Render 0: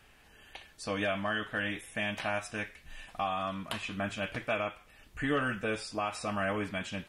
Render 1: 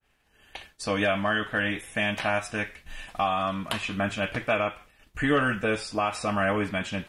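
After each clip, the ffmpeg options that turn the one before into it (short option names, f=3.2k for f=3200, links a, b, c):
-af "agate=range=-33dB:threshold=-49dB:ratio=3:detection=peak,adynamicequalizer=threshold=0.00447:dfrequency=2800:dqfactor=0.7:tfrequency=2800:tqfactor=0.7:attack=5:release=100:ratio=0.375:range=1.5:mode=cutabove:tftype=highshelf,volume=7dB"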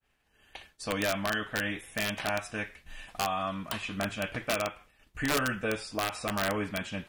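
-af "aeval=exprs='(mod(5.96*val(0)+1,2)-1)/5.96':c=same,volume=-5dB"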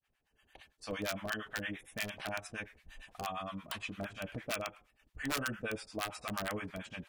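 -filter_complex "[0:a]acrossover=split=710[a][b];[a]aeval=exprs='val(0)*(1-1/2+1/2*cos(2*PI*8.7*n/s))':c=same[c];[b]aeval=exprs='val(0)*(1-1/2-1/2*cos(2*PI*8.7*n/s))':c=same[d];[c][d]amix=inputs=2:normalize=0,volume=-3dB"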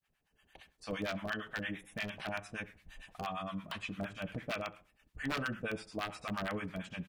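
-filter_complex "[0:a]acrossover=split=4600[a][b];[b]acompressor=threshold=-53dB:ratio=4:attack=1:release=60[c];[a][c]amix=inputs=2:normalize=0,equalizer=f=170:w=3.3:g=6.5,asplit=2[d][e];[e]adelay=67,lowpass=f=1.3k:p=1,volume=-18dB,asplit=2[f][g];[g]adelay=67,lowpass=f=1.3k:p=1,volume=0.41,asplit=2[h][i];[i]adelay=67,lowpass=f=1.3k:p=1,volume=0.41[j];[d][f][h][j]amix=inputs=4:normalize=0"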